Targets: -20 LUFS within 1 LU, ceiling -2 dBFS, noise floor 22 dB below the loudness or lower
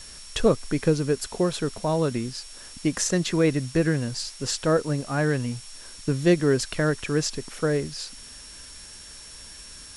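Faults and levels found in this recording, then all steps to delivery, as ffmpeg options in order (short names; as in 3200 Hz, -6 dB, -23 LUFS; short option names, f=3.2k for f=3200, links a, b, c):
steady tone 5500 Hz; tone level -46 dBFS; noise floor -44 dBFS; noise floor target -47 dBFS; loudness -25.0 LUFS; peak -8.5 dBFS; loudness target -20.0 LUFS
-> -af "bandreject=f=5.5k:w=30"
-af "afftdn=nr=6:nf=-44"
-af "volume=5dB"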